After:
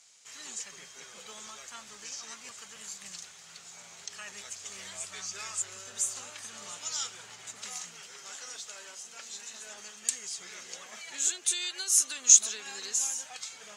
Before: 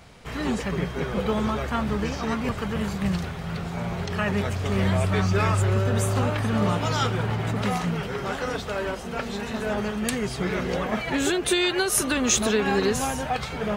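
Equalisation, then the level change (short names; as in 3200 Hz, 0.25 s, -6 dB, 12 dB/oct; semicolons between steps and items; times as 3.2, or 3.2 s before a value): band-pass 6900 Hz, Q 3.8; +8.0 dB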